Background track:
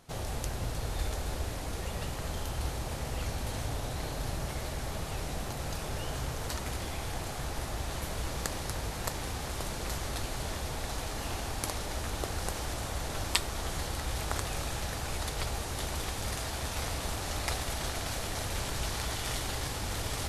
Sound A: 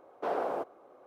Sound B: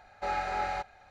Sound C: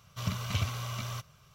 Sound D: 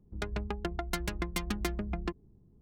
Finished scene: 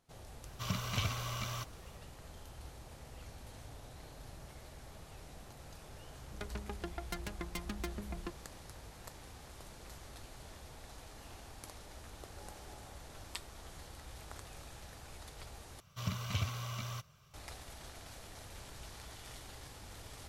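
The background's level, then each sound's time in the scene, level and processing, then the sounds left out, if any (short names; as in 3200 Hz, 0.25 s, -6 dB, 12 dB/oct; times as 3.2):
background track -16 dB
0.43 add C -1 dB + low shelf 120 Hz -7.5 dB
6.19 add D -8 dB
12.14 add B -10 dB + band-pass 290 Hz, Q 3
15.8 replace with C -4.5 dB
not used: A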